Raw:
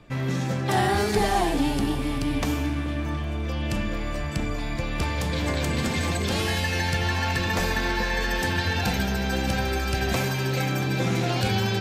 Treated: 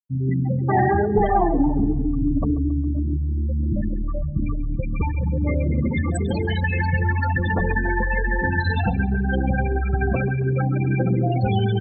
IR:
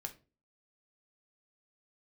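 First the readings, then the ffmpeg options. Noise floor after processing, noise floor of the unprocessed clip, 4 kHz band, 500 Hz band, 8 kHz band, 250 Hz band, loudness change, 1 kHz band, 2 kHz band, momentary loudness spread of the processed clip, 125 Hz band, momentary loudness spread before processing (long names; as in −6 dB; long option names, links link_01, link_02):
−24 dBFS, −28 dBFS, −12.0 dB, +3.0 dB, −13.5 dB, +4.5 dB, +3.5 dB, +2.5 dB, +0.5 dB, 6 LU, +5.5 dB, 6 LU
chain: -filter_complex "[0:a]afftfilt=real='re*gte(hypot(re,im),0.141)':imag='im*gte(hypot(re,im),0.141)':win_size=1024:overlap=0.75,acontrast=24,asplit=2[link_01][link_02];[link_02]adelay=136,lowpass=frequency=3300:poles=1,volume=-17dB,asplit=2[link_03][link_04];[link_04]adelay=136,lowpass=frequency=3300:poles=1,volume=0.54,asplit=2[link_05][link_06];[link_06]adelay=136,lowpass=frequency=3300:poles=1,volume=0.54,asplit=2[link_07][link_08];[link_08]adelay=136,lowpass=frequency=3300:poles=1,volume=0.54,asplit=2[link_09][link_10];[link_10]adelay=136,lowpass=frequency=3300:poles=1,volume=0.54[link_11];[link_01][link_03][link_05][link_07][link_09][link_11]amix=inputs=6:normalize=0"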